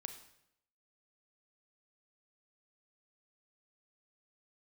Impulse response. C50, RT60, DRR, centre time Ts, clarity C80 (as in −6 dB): 9.5 dB, 0.75 s, 7.0 dB, 14 ms, 12.0 dB